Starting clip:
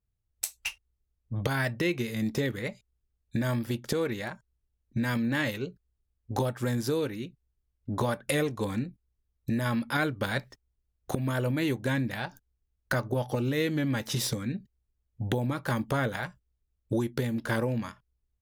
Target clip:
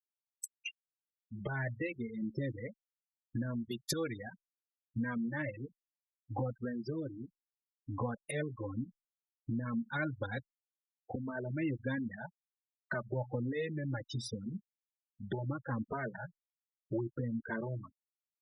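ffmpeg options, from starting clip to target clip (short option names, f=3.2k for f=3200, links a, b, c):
-filter_complex "[0:a]asettb=1/sr,asplit=3[a][b][c];[a]atrim=end=3.624[d];[b]atrim=start=3.62:end=4.18,asetpts=PTS-STARTPTS,afade=t=in:d=0.004:c=qsin,afade=t=out:st=0.556:d=0.004:c=qsin,highshelf=f=2.4k:g=12[e];[c]atrim=start=4.176[f];[d][e]acrossfade=d=0.004:c1=hsin:c2=qsin[g];[g][f]acrossfade=d=0.004:c1=qsin:c2=hsin,afftfilt=real='re*gte(hypot(re,im),0.0501)':imag='im*gte(hypot(re,im),0.0501)':win_size=1024:overlap=0.75,asplit=2[h][i];[i]adelay=2.9,afreqshift=-1.3[j];[h][j]amix=inputs=2:normalize=1,volume=-5dB"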